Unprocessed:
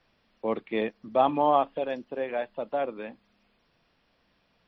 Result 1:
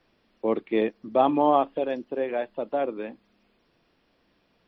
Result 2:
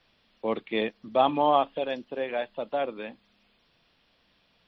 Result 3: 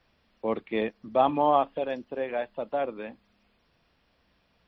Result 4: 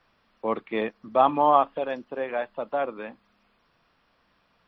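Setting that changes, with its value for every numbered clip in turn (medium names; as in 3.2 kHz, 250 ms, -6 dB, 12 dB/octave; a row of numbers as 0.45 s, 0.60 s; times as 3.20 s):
peaking EQ, frequency: 340 Hz, 3.5 kHz, 64 Hz, 1.2 kHz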